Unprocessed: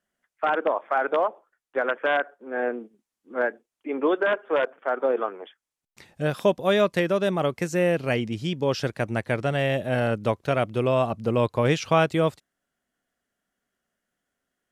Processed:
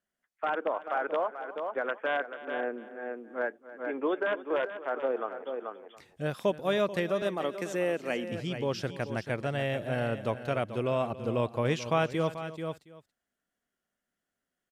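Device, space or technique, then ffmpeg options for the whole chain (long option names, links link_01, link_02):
ducked delay: -filter_complex "[0:a]asplit=3[link_01][link_02][link_03];[link_02]adelay=436,volume=-3.5dB[link_04];[link_03]apad=whole_len=668005[link_05];[link_04][link_05]sidechaincompress=threshold=-26dB:ratio=12:attack=9.1:release=702[link_06];[link_01][link_06]amix=inputs=2:normalize=0,asettb=1/sr,asplit=3[link_07][link_08][link_09];[link_07]atrim=end=7.224[link_10];[link_08]atrim=start=7.22:end=8.32,asetpts=PTS-STARTPTS,afade=type=in:duration=0.004:curve=qsin,afade=type=out:start_time=1.096:duration=0.004:curve=qsin,highpass=frequency=210:width=0.5412,highpass=frequency=210:width=1.3066[link_11];[link_09]atrim=start=8.316[link_12];[link_10][link_11]acrossfade=duration=0.004:curve1=hsin:curve2=qsin[link_13];[link_13][link_12]acrossfade=duration=0.004:curve1=qsin:curve2=hsin,aecho=1:1:280:0.15,volume=-7dB"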